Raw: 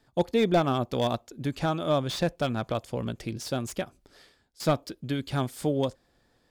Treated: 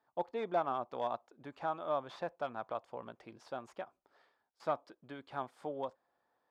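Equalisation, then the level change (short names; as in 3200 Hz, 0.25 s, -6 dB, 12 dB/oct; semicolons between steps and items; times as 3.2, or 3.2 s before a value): band-pass 940 Hz, Q 1.8; -3.5 dB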